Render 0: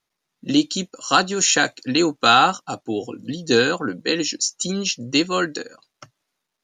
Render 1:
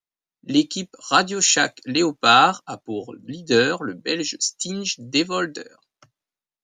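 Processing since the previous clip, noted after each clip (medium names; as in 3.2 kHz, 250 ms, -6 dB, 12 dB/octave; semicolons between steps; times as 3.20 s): three bands expanded up and down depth 40%; trim -1.5 dB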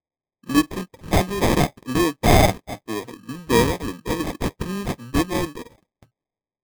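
sample-and-hold 31×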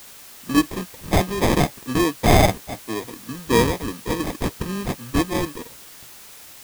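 added noise white -43 dBFS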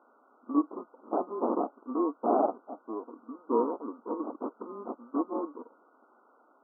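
brick-wall FIR band-pass 220–1500 Hz; trim -8 dB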